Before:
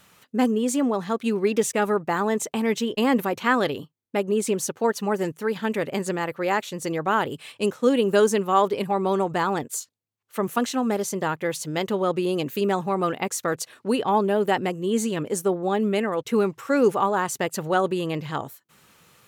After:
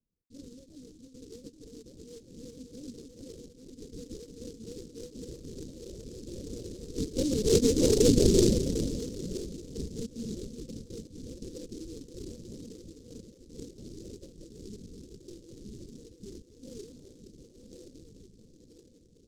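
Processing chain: backward echo that repeats 456 ms, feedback 75%, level -7 dB; Doppler pass-by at 8.08 s, 29 m/s, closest 7.5 m; elliptic low-pass 500 Hz, stop band 40 dB; peaking EQ 85 Hz +12 dB 1.5 oct; LPC vocoder at 8 kHz whisper; delay time shaken by noise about 5.4 kHz, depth 0.11 ms; trim +2.5 dB

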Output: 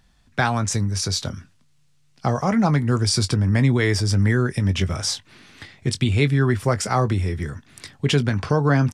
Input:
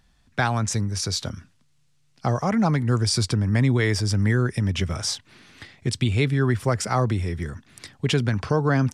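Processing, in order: doubling 21 ms -12 dB; trim +2 dB

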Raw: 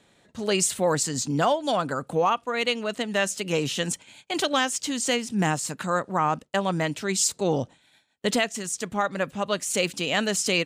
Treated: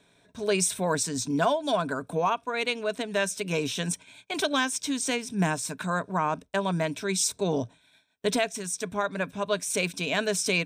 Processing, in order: rippled EQ curve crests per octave 1.6, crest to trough 9 dB; trim -3 dB

